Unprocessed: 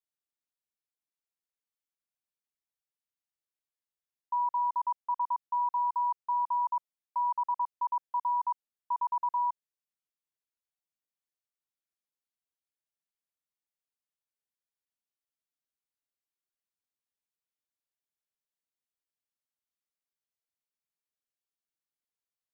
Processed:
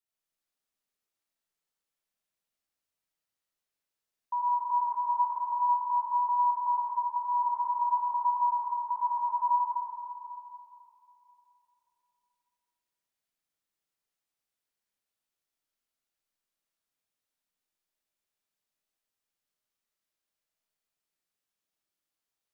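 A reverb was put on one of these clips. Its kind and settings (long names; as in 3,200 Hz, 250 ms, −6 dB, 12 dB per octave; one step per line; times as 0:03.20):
comb and all-pass reverb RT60 3 s, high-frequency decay 0.9×, pre-delay 25 ms, DRR −6.5 dB
level −1 dB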